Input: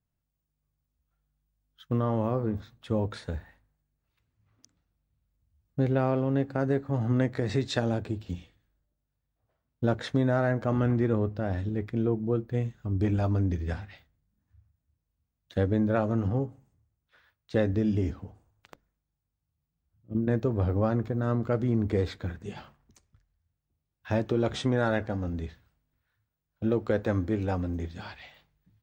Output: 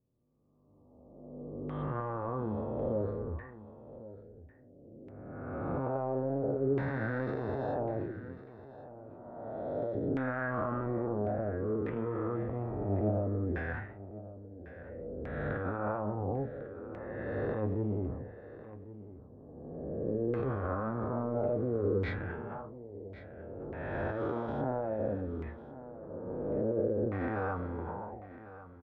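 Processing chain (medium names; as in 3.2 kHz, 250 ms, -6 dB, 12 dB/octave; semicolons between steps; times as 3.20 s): reverse spectral sustain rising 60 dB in 2.41 s; level-controlled noise filter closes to 440 Hz, open at -21 dBFS; 8.00–9.95 s: tilt EQ +3 dB/octave; transient shaper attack -6 dB, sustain +7 dB; peak limiter -17 dBFS, peak gain reduction 7.5 dB; flange 0.22 Hz, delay 7.7 ms, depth 7.3 ms, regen +70%; LFO low-pass saw down 0.59 Hz 390–2100 Hz; flange 0.5 Hz, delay 2 ms, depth 1.4 ms, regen -83%; on a send: delay 1099 ms -15.5 dB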